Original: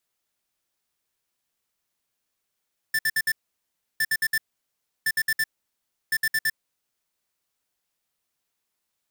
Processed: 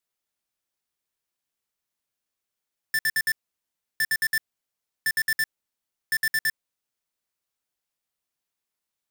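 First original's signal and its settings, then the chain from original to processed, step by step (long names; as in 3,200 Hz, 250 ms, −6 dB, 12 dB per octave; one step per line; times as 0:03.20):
beeps in groups square 1,770 Hz, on 0.05 s, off 0.06 s, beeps 4, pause 0.68 s, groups 4, −22.5 dBFS
leveller curve on the samples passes 3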